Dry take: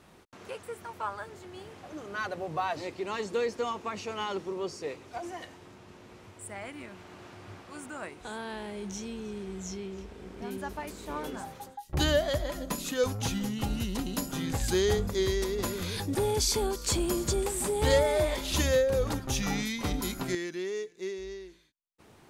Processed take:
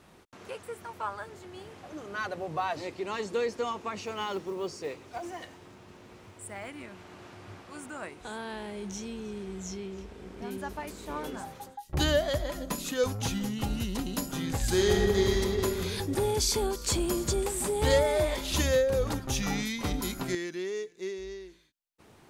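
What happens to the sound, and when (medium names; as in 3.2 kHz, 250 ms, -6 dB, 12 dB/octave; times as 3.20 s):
4.02–6.70 s: short-mantissa float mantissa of 4-bit
14.61–15.35 s: reverb throw, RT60 2.7 s, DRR 0 dB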